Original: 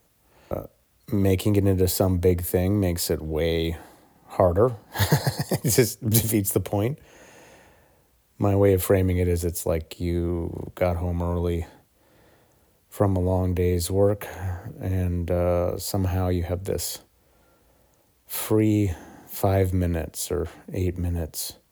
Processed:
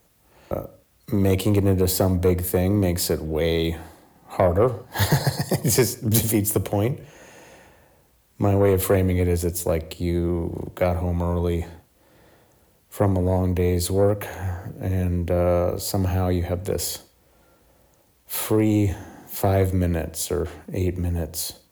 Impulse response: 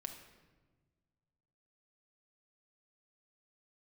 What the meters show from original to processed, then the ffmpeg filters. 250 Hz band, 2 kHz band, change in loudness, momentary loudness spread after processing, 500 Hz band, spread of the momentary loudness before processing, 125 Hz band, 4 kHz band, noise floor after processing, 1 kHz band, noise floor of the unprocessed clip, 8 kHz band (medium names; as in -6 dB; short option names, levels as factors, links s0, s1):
+1.5 dB, +2.0 dB, +1.5 dB, 10 LU, +1.0 dB, 11 LU, +1.5 dB, +2.0 dB, -60 dBFS, +2.0 dB, -63 dBFS, +2.0 dB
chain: -filter_complex "[0:a]asoftclip=type=tanh:threshold=0.251,asplit=2[s0][s1];[1:a]atrim=start_sample=2205,afade=t=out:st=0.23:d=0.01,atrim=end_sample=10584[s2];[s1][s2]afir=irnorm=-1:irlink=0,volume=0.562[s3];[s0][s3]amix=inputs=2:normalize=0"